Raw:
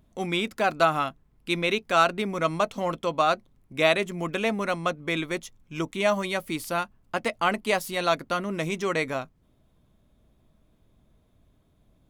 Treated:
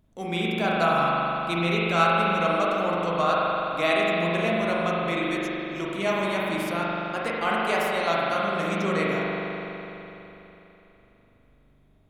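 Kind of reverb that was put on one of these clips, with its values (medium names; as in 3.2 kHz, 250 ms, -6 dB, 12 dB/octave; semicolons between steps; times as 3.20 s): spring tank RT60 3.4 s, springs 41 ms, chirp 50 ms, DRR -5.5 dB; trim -4.5 dB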